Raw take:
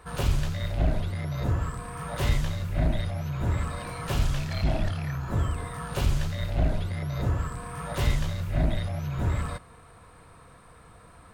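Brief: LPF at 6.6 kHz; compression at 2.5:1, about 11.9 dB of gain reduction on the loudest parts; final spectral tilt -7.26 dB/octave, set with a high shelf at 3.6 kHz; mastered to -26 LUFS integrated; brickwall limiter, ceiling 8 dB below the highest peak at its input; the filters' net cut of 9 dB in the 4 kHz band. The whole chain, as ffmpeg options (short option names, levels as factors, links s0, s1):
-af "lowpass=6600,highshelf=f=3600:g=-9,equalizer=f=4000:t=o:g=-5.5,acompressor=threshold=0.0141:ratio=2.5,volume=5.96,alimiter=limit=0.15:level=0:latency=1"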